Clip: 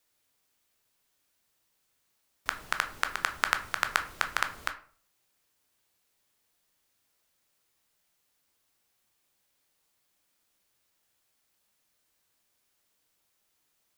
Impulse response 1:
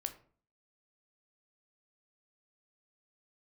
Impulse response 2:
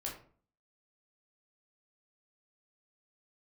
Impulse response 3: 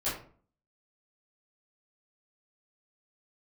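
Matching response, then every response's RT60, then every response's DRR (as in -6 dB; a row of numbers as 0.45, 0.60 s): 1; 0.45, 0.45, 0.45 s; 7.0, -3.0, -12.5 dB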